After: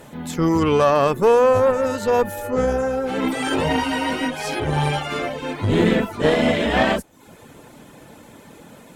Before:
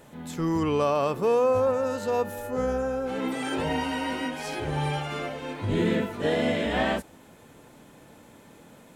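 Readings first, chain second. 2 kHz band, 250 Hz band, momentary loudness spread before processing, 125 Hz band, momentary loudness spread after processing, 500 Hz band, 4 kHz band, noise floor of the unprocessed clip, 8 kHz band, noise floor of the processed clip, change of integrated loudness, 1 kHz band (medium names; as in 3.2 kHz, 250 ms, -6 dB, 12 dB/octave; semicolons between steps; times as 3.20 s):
+8.0 dB, +7.0 dB, 8 LU, +7.0 dB, 8 LU, +7.0 dB, +7.5 dB, -52 dBFS, +8.0 dB, -46 dBFS, +7.0 dB, +8.0 dB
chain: reverb removal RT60 0.53 s; Chebyshev shaper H 4 -19 dB, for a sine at -13.5 dBFS; trim +8.5 dB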